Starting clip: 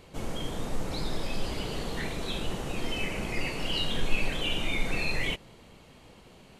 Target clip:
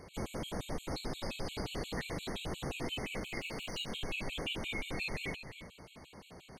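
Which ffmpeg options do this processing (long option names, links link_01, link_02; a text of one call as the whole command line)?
ffmpeg -i in.wav -filter_complex "[0:a]highpass=frequency=43:poles=1,acompressor=threshold=-36dB:ratio=4,asettb=1/sr,asplit=3[link_01][link_02][link_03];[link_01]atrim=end=3.184[link_04];[link_02]atrim=start=3.18:end=3.91,asetpts=PTS-STARTPTS,afade=type=in:duration=0.004:curve=qsin,afade=type=out:start_time=0.726:duration=0.004:curve=qsin,aeval=exprs='clip(val(0),-1,0.00668)':channel_layout=same[link_05];[link_03]atrim=start=3.906[link_06];[link_04][link_05]acrossfade=duration=0.004:curve1=hsin:curve2=qsin[link_07];[link_07][link_06]acrossfade=duration=0.004:curve1=qsin:curve2=hsin,asplit=2[link_08][link_09];[link_09]aecho=0:1:318:0.251[link_10];[link_08][link_10]amix=inputs=2:normalize=0,afftfilt=real='re*gt(sin(2*PI*5.7*pts/sr)*(1-2*mod(floor(b*sr/1024/2200),2)),0)':imag='im*gt(sin(2*PI*5.7*pts/sr)*(1-2*mod(floor(b*sr/1024/2200),2)),0)':win_size=1024:overlap=0.75,volume=2.5dB" out.wav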